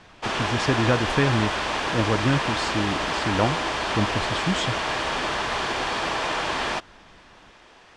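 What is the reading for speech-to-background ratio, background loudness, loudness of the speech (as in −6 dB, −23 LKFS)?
−1.0 dB, −25.5 LKFS, −26.5 LKFS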